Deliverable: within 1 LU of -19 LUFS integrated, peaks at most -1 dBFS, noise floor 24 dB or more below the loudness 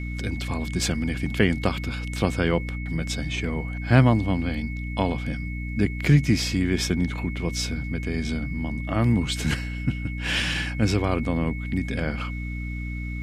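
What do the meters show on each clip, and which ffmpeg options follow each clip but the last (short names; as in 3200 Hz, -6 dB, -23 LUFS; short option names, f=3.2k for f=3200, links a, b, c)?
hum 60 Hz; harmonics up to 300 Hz; hum level -28 dBFS; steady tone 2200 Hz; tone level -38 dBFS; loudness -25.5 LUFS; peak -4.5 dBFS; loudness target -19.0 LUFS
-> -af "bandreject=f=60:t=h:w=6,bandreject=f=120:t=h:w=6,bandreject=f=180:t=h:w=6,bandreject=f=240:t=h:w=6,bandreject=f=300:t=h:w=6"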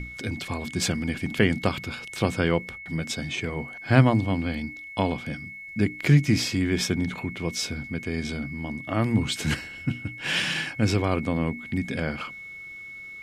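hum none; steady tone 2200 Hz; tone level -38 dBFS
-> -af "bandreject=f=2.2k:w=30"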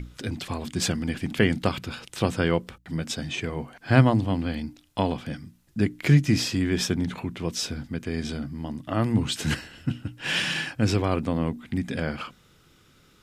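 steady tone none; loudness -26.5 LUFS; peak -4.0 dBFS; loudness target -19.0 LUFS
-> -af "volume=7.5dB,alimiter=limit=-1dB:level=0:latency=1"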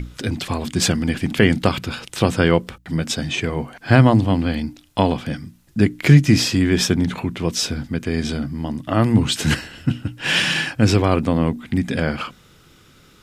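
loudness -19.5 LUFS; peak -1.0 dBFS; noise floor -51 dBFS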